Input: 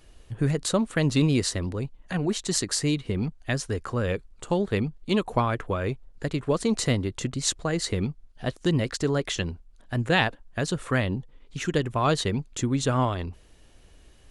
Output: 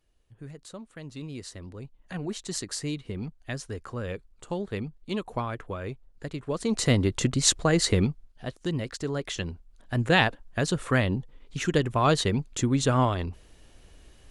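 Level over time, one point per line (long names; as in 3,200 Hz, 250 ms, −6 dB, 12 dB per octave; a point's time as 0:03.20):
0:01.12 −18.5 dB
0:02.12 −7 dB
0:06.47 −7 dB
0:07.04 +4.5 dB
0:07.99 +4.5 dB
0:08.45 −6 dB
0:09.05 −6 dB
0:10.07 +1 dB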